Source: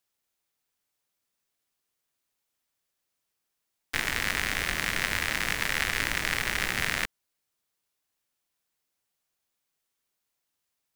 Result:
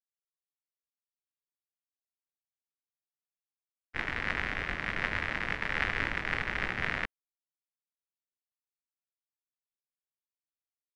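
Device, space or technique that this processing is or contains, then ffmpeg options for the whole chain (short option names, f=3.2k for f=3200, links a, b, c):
hearing-loss simulation: -af "lowpass=2.3k,agate=range=-33dB:threshold=-24dB:ratio=3:detection=peak,volume=4.5dB"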